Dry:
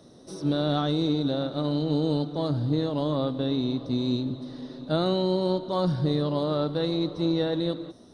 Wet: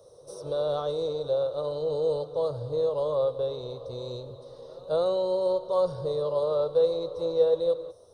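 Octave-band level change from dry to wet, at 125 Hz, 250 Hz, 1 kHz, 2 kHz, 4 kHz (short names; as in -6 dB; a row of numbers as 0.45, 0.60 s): -12.5 dB, -17.0 dB, -3.0 dB, under -10 dB, -9.0 dB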